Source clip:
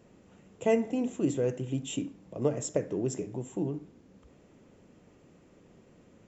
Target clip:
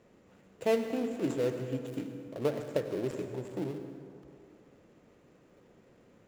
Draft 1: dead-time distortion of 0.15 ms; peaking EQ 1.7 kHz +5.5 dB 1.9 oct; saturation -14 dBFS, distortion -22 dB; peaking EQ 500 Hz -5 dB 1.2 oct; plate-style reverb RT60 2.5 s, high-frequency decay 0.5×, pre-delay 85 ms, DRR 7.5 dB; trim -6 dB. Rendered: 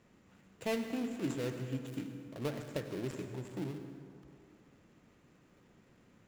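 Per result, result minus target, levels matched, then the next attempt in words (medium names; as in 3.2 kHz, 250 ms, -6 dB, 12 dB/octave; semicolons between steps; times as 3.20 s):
saturation: distortion +15 dB; 500 Hz band -3.0 dB
dead-time distortion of 0.15 ms; peaking EQ 1.7 kHz +5.5 dB 1.9 oct; saturation -5.5 dBFS, distortion -37 dB; peaking EQ 500 Hz -5 dB 1.2 oct; plate-style reverb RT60 2.5 s, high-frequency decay 0.5×, pre-delay 85 ms, DRR 7.5 dB; trim -6 dB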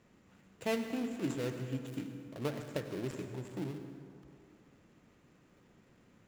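500 Hz band -3.0 dB
dead-time distortion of 0.15 ms; peaking EQ 1.7 kHz +5.5 dB 1.9 oct; saturation -5.5 dBFS, distortion -37 dB; peaking EQ 500 Hz +4 dB 1.2 oct; plate-style reverb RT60 2.5 s, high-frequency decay 0.5×, pre-delay 85 ms, DRR 7.5 dB; trim -6 dB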